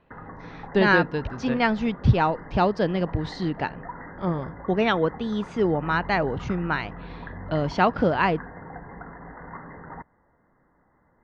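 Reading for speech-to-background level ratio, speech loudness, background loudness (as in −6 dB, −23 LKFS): 16.0 dB, −24.5 LKFS, −40.5 LKFS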